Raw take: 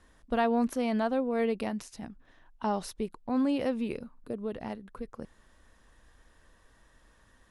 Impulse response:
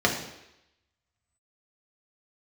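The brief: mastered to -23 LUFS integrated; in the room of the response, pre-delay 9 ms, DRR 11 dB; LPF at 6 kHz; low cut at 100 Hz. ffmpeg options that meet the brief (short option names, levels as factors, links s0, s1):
-filter_complex "[0:a]highpass=100,lowpass=6000,asplit=2[s0][s1];[1:a]atrim=start_sample=2205,adelay=9[s2];[s1][s2]afir=irnorm=-1:irlink=0,volume=0.0473[s3];[s0][s3]amix=inputs=2:normalize=0,volume=2.37"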